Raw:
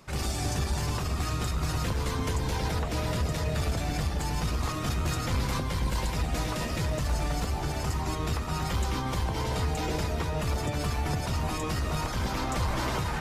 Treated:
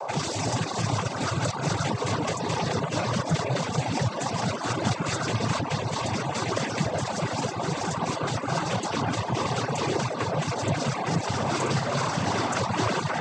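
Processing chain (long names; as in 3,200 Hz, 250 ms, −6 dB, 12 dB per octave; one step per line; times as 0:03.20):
noise in a band 460–1,000 Hz −39 dBFS
cochlear-implant simulation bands 16
reverb reduction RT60 0.58 s
0:11.25–0:12.62: flutter between parallel walls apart 10.4 metres, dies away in 0.54 s
level +6 dB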